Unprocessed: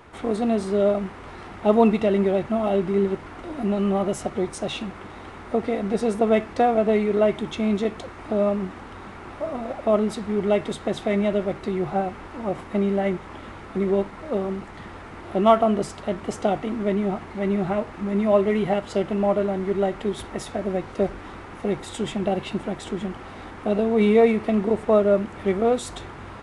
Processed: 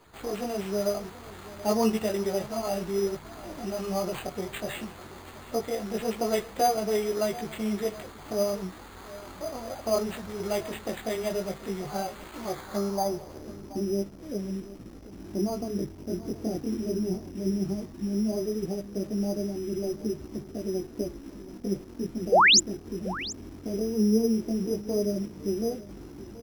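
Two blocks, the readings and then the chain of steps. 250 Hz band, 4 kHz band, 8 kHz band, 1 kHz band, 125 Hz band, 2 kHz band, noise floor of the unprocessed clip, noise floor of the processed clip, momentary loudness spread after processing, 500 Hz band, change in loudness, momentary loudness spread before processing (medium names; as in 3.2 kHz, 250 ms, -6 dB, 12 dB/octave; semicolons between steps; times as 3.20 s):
-6.0 dB, +6.5 dB, +8.5 dB, -5.0 dB, -6.0 dB, +2.0 dB, -40 dBFS, -46 dBFS, 13 LU, -8.0 dB, -5.5 dB, 15 LU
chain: dynamic bell 260 Hz, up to -6 dB, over -35 dBFS, Q 2.2; low-pass sweep 9.3 kHz -> 310 Hz, 11.65–13.64 s; in parallel at -8 dB: bit crusher 6-bit; on the sum: chorus voices 2, 0.15 Hz, delay 18 ms, depth 4.8 ms; sample-and-hold 8×; painted sound rise, 22.32–22.60 s, 420–7700 Hz -11 dBFS; on a send: delay 729 ms -17.5 dB; on the sum: trim -6 dB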